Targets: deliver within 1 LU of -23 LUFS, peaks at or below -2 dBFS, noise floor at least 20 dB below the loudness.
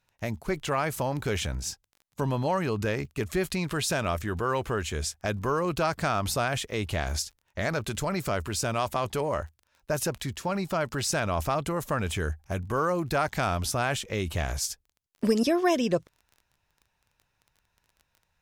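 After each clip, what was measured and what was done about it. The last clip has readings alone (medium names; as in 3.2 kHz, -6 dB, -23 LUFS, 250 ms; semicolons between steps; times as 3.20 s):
tick rate 20 per s; loudness -29.0 LUFS; peak level -12.0 dBFS; loudness target -23.0 LUFS
-> de-click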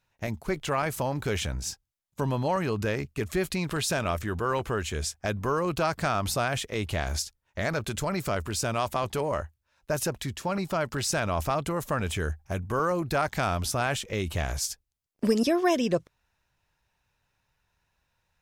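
tick rate 0 per s; loudness -29.0 LUFS; peak level -12.0 dBFS; loudness target -23.0 LUFS
-> trim +6 dB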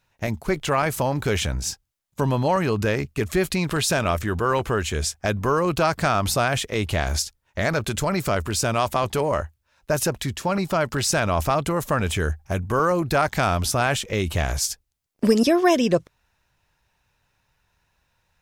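loudness -23.0 LUFS; peak level -6.0 dBFS; noise floor -71 dBFS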